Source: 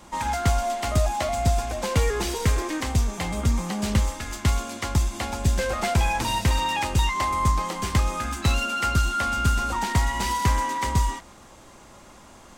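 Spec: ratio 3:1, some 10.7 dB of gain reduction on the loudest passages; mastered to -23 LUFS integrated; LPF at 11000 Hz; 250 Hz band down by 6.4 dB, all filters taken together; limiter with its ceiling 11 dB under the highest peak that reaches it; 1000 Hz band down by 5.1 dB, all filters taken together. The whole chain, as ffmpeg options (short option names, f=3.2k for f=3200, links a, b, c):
-af "lowpass=11k,equalizer=f=250:t=o:g=-9,equalizer=f=1k:t=o:g=-6,acompressor=threshold=-32dB:ratio=3,volume=14.5dB,alimiter=limit=-14dB:level=0:latency=1"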